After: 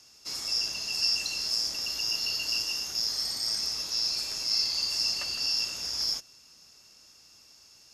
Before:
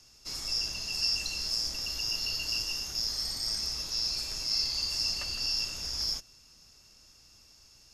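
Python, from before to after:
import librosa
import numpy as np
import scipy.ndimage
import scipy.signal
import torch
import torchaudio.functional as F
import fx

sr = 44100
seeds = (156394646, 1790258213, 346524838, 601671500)

y = fx.highpass(x, sr, hz=250.0, slope=6)
y = F.gain(torch.from_numpy(y), 2.5).numpy()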